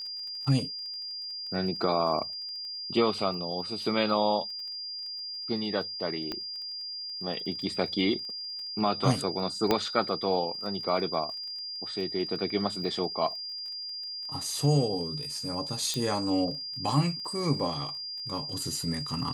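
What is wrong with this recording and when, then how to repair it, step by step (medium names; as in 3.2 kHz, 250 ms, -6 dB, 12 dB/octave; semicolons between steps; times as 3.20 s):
crackle 21 per s -39 dBFS
whine 4.8 kHz -35 dBFS
6.32 s: pop -19 dBFS
9.71 s: pop -10 dBFS
15.94 s: pop -17 dBFS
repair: de-click; band-stop 4.8 kHz, Q 30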